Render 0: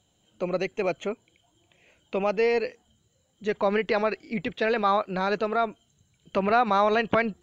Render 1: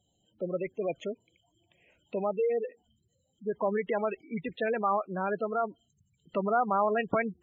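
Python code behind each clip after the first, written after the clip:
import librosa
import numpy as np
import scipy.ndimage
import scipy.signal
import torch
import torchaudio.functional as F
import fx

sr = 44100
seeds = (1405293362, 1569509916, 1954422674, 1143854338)

y = fx.spec_gate(x, sr, threshold_db=-15, keep='strong')
y = F.gain(torch.from_numpy(y), -4.5).numpy()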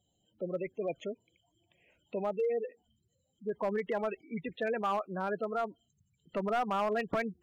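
y = np.clip(x, -10.0 ** (-22.5 / 20.0), 10.0 ** (-22.5 / 20.0))
y = F.gain(torch.from_numpy(y), -3.0).numpy()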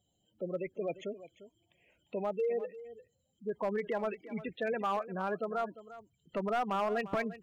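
y = x + 10.0 ** (-15.5 / 20.0) * np.pad(x, (int(349 * sr / 1000.0), 0))[:len(x)]
y = F.gain(torch.from_numpy(y), -1.0).numpy()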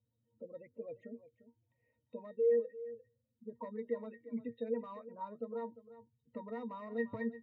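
y = fx.octave_resonator(x, sr, note='A#', decay_s=0.13)
y = F.gain(torch.from_numpy(y), 4.5).numpy()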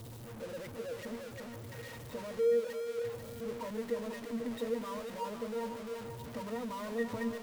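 y = x + 0.5 * 10.0 ** (-40.5 / 20.0) * np.sign(x)
y = fx.echo_split(y, sr, split_hz=400.0, low_ms=164, high_ms=494, feedback_pct=52, wet_db=-9.5)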